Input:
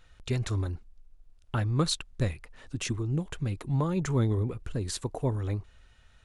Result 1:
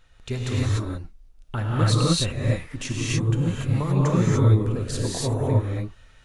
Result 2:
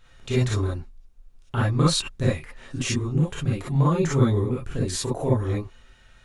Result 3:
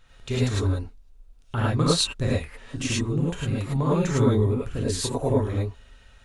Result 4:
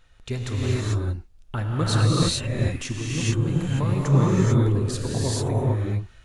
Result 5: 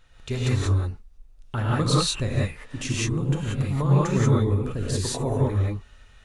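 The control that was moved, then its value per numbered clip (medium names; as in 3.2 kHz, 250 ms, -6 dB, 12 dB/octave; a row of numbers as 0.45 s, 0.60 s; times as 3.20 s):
gated-style reverb, gate: 320 ms, 80 ms, 130 ms, 470 ms, 210 ms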